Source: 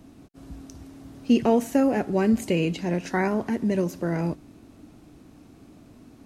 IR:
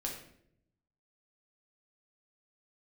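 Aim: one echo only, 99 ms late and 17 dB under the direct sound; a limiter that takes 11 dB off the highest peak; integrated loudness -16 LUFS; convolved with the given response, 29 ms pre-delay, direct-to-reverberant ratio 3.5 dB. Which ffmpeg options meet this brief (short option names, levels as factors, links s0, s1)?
-filter_complex "[0:a]alimiter=limit=0.1:level=0:latency=1,aecho=1:1:99:0.141,asplit=2[s0][s1];[1:a]atrim=start_sample=2205,adelay=29[s2];[s1][s2]afir=irnorm=-1:irlink=0,volume=0.596[s3];[s0][s3]amix=inputs=2:normalize=0,volume=3.98"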